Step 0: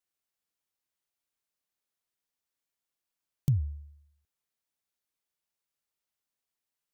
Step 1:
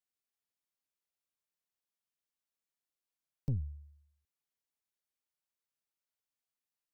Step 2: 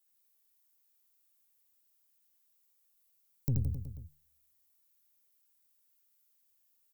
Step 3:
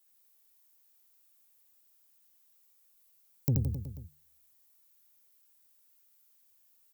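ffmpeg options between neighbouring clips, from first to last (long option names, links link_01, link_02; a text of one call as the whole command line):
ffmpeg -i in.wav -af "aeval=exprs='(tanh(14.1*val(0)+0.6)-tanh(0.6))/14.1':channel_layout=same,volume=-3.5dB" out.wav
ffmpeg -i in.wav -filter_complex "[0:a]aemphasis=mode=production:type=50fm,asplit=2[link_01][link_02];[link_02]aecho=0:1:80|168|264.8|371.3|488.4:0.631|0.398|0.251|0.158|0.1[link_03];[link_01][link_03]amix=inputs=2:normalize=0,volume=2.5dB" out.wav
ffmpeg -i in.wav -filter_complex "[0:a]highpass=frequency=130:poles=1,acrossover=split=870[link_01][link_02];[link_01]crystalizer=i=9:c=0[link_03];[link_03][link_02]amix=inputs=2:normalize=0,volume=6dB" out.wav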